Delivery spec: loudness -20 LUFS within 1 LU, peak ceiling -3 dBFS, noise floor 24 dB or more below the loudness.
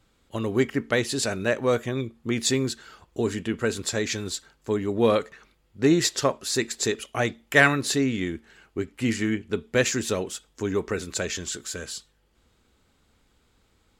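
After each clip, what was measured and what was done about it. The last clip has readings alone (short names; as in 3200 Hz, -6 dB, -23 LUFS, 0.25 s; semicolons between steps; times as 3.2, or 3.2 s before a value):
loudness -25.5 LUFS; peak -4.5 dBFS; loudness target -20.0 LUFS
-> gain +5.5 dB; limiter -3 dBFS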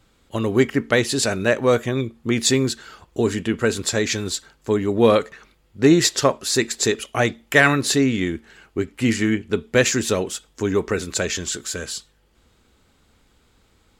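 loudness -20.5 LUFS; peak -3.0 dBFS; noise floor -60 dBFS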